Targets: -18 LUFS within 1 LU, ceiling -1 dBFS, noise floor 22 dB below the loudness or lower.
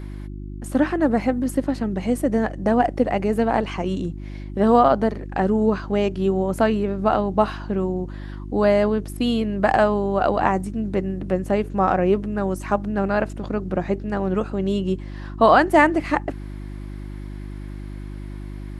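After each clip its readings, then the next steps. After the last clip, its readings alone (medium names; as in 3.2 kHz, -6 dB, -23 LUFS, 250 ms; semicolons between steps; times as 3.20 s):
hum 50 Hz; highest harmonic 350 Hz; hum level -31 dBFS; loudness -21.5 LUFS; peak level -2.5 dBFS; loudness target -18.0 LUFS
-> de-hum 50 Hz, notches 7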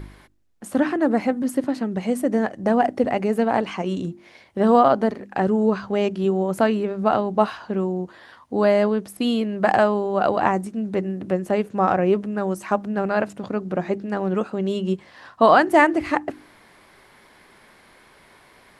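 hum not found; loudness -21.5 LUFS; peak level -2.5 dBFS; loudness target -18.0 LUFS
-> trim +3.5 dB; peak limiter -1 dBFS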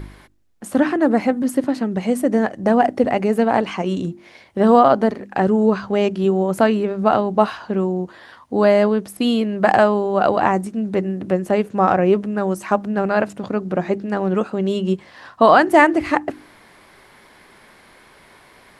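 loudness -18.5 LUFS; peak level -1.0 dBFS; noise floor -49 dBFS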